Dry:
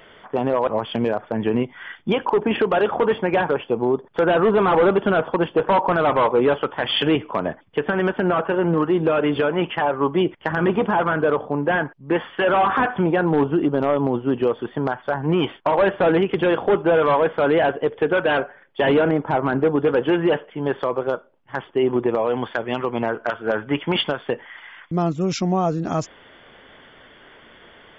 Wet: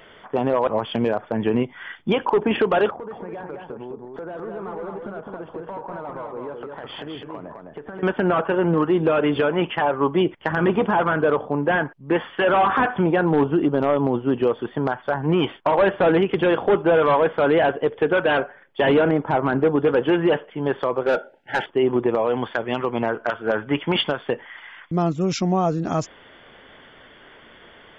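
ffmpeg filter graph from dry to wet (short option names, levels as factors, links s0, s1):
-filter_complex "[0:a]asettb=1/sr,asplit=3[s0][s1][s2];[s0]atrim=end=2.904[s3];[s1]atrim=start=2.9:end=8.03,asetpts=PTS-STARTPTS,afade=t=in:d=0.004:c=qsin,afade=t=out:st=5.126:d=0.004:c=qsin,equalizer=f=3100:t=o:w=1.2:g=-12,acompressor=threshold=0.0224:ratio=5:attack=3.2:release=140:knee=1:detection=peak,aecho=1:1:208:0.631,atrim=end_sample=226233[s4];[s2]atrim=start=8.026[s5];[s3][s4]acrossfade=d=0.004:c1=hsin:c2=qsin[s6];[s6][s5]acrossfade=d=0.004:c1=qsin:c2=hsin,asettb=1/sr,asplit=3[s7][s8][s9];[s7]atrim=end=21.064[s10];[s8]atrim=start=21.06:end=21.66,asetpts=PTS-STARTPTS,afade=t=in:d=0.004:c=qsin,afade=t=out:st=0.596:d=0.004:c=qsin,asuperstop=centerf=1100:order=12:qfactor=2.4,asplit=2[s11][s12];[s12]highpass=f=720:p=1,volume=12.6,asoftclip=type=tanh:threshold=0.282[s13];[s11][s13]amix=inputs=2:normalize=0,lowpass=f=2000:p=1,volume=0.501[s14];[s9]atrim=start=21.656[s15];[s10][s14]acrossfade=d=0.004:c1=hsin:c2=qsin[s16];[s16][s15]acrossfade=d=0.004:c1=qsin:c2=hsin"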